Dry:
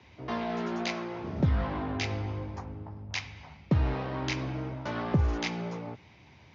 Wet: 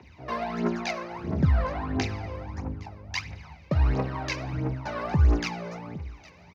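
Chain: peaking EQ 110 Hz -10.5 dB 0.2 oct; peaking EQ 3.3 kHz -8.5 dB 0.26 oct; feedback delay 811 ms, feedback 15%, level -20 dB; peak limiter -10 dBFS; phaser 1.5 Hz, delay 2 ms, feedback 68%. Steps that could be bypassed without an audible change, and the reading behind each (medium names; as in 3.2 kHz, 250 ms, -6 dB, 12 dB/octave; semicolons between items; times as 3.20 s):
peak limiter -10 dBFS: peak at its input -15.5 dBFS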